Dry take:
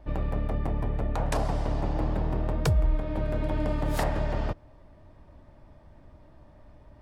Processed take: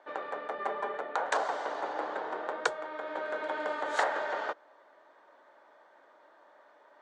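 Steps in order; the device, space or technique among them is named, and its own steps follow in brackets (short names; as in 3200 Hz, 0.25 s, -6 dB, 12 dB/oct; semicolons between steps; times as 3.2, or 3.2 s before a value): LPF 9000 Hz; phone speaker on a table (speaker cabinet 480–7400 Hz, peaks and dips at 630 Hz -5 dB, 1500 Hz +7 dB, 2600 Hz -7 dB, 5100 Hz -9 dB); 0.58–0.99 comb 5 ms, depth 98%; gain +3.5 dB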